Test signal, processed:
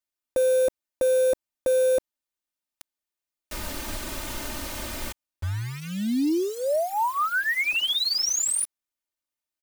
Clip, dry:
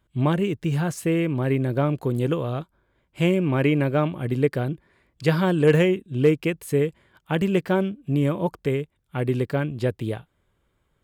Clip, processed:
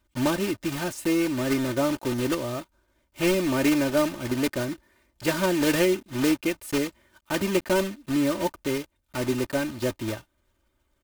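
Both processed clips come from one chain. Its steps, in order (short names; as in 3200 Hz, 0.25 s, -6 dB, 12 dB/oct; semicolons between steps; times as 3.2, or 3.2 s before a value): block floating point 3-bit; comb 3.3 ms, depth 72%; gain -3.5 dB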